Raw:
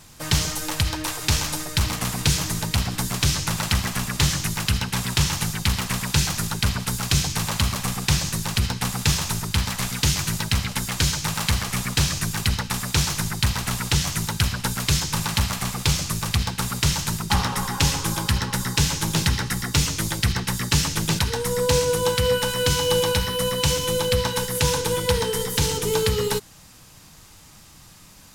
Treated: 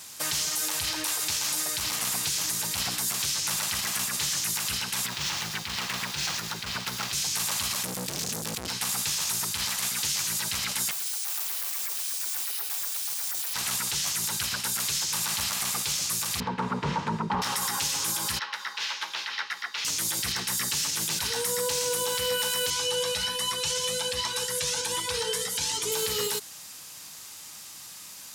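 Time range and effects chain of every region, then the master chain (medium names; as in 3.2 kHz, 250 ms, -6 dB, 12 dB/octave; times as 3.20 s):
5.06–7.13 s: median filter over 5 samples + treble shelf 8.7 kHz -5.5 dB + compression 2.5:1, threshold -24 dBFS
7.83–8.69 s: resonant low shelf 320 Hz +11.5 dB, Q 3 + valve stage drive 24 dB, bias 0.55
10.91–13.54 s: steep high-pass 380 Hz 96 dB/octave + frequency shift -68 Hz + careless resampling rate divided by 3×, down none, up zero stuff
16.40–17.42 s: low-pass 1.5 kHz + small resonant body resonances 220/440/920 Hz, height 13 dB, ringing for 25 ms
18.39–19.85 s: high-pass 1 kHz + distance through air 290 m
22.70–25.92 s: low-pass 9 kHz + Shepard-style flanger rising 1.3 Hz
whole clip: high-pass 540 Hz 6 dB/octave; treble shelf 2.8 kHz +8.5 dB; peak limiter -19 dBFS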